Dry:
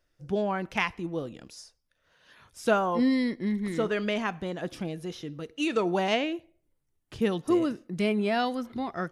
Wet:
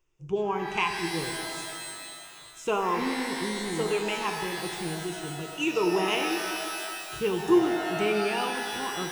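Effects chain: ripple EQ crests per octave 0.71, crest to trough 14 dB; shimmer reverb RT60 2.4 s, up +12 st, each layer -2 dB, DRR 5 dB; gain -4 dB

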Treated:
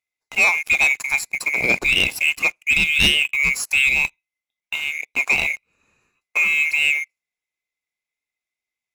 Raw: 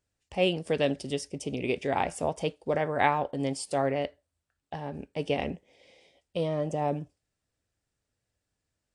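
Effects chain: band-swap scrambler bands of 2000 Hz; 1.21–3.62 low shelf 460 Hz +6.5 dB; sample leveller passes 3

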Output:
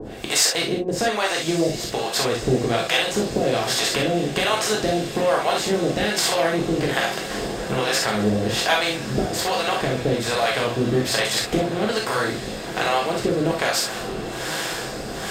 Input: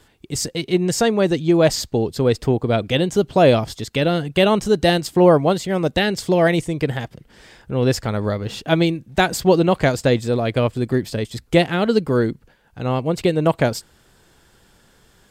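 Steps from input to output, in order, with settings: per-bin compression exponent 0.6; low shelf 390 Hz -9 dB; compressor 4:1, threshold -27 dBFS, peak gain reduction 14.5 dB; harmonic tremolo 1.2 Hz, depth 100%, crossover 550 Hz; diffused feedback echo 1.165 s, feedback 69%, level -13 dB; non-linear reverb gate 90 ms flat, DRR -2 dB; gain +8.5 dB

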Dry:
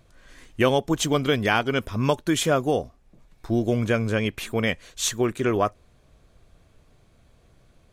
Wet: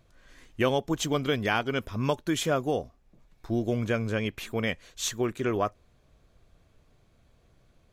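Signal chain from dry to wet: bell 9000 Hz -5.5 dB 0.28 oct; gain -5 dB

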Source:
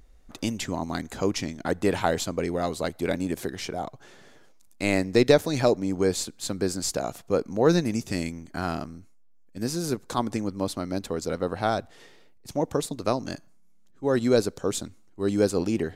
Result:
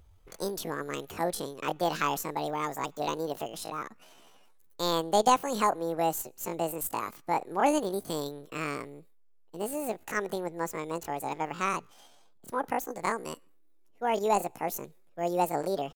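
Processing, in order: pitch shift +9.5 st; gain -4.5 dB

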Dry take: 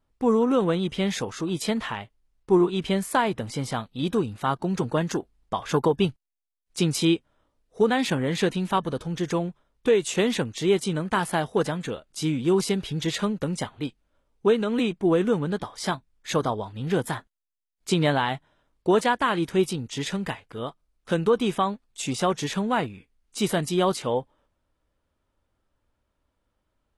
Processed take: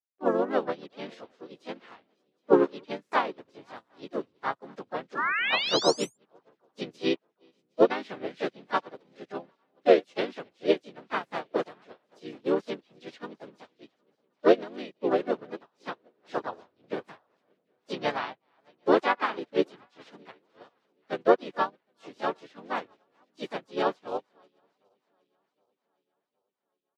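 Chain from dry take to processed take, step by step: regenerating reverse delay 0.383 s, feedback 71%, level -14 dB; HPF 46 Hz 12 dB/oct; painted sound rise, 5.17–6.16, 1100–9600 Hz -22 dBFS; harmoniser -4 st -3 dB, +3 st -2 dB, +7 st -5 dB; three-band isolator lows -17 dB, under 260 Hz, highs -22 dB, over 5300 Hz; upward expander 2.5:1, over -35 dBFS

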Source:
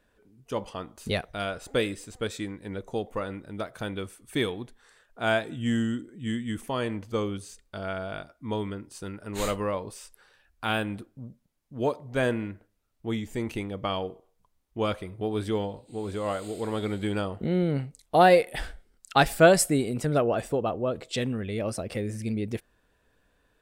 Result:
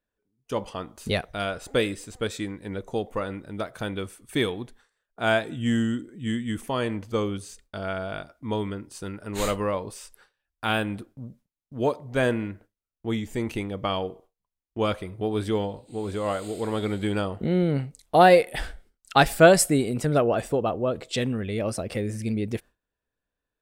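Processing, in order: gate with hold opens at -43 dBFS; gain +2.5 dB

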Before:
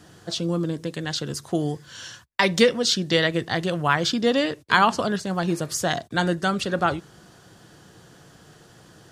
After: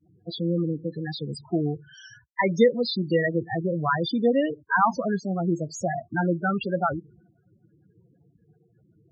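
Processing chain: expander -43 dBFS; loudest bins only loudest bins 8

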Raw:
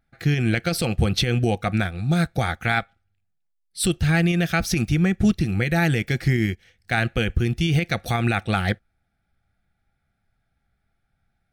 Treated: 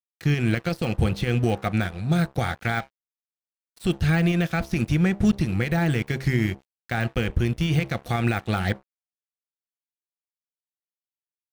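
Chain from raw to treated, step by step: de-hum 67 Hz, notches 15; de-esser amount 80%; crossover distortion -38 dBFS

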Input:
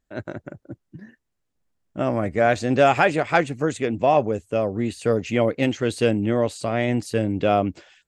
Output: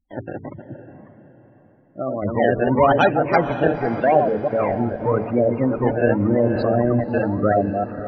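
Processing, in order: reverse delay 0.16 s, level -4.5 dB; decimation with a swept rate 23×, swing 160% 0.87 Hz; de-hum 54.72 Hz, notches 8; spectral gate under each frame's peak -15 dB strong; 0.85–2.22 low shelf 390 Hz -10 dB; 4.71–5.24 steep low-pass 1600 Hz 48 dB/oct; diffused feedback echo 0.552 s, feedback 42%, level -11.5 dB; 6.2–7 fast leveller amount 50%; gain +2 dB

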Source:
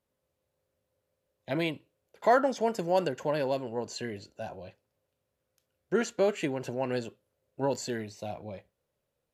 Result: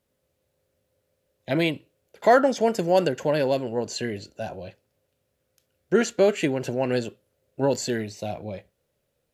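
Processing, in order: bell 1000 Hz -5.5 dB 0.71 oct; gain +7.5 dB

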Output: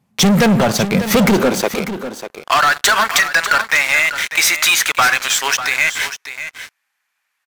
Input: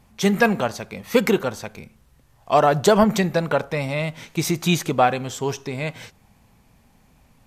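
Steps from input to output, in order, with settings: high-pass sweep 150 Hz -> 1600 Hz, 1.18–2.55; sample leveller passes 5; compressor, threshold -11 dBFS, peak gain reduction 6.5 dB; echo 0.595 s -11.5 dB

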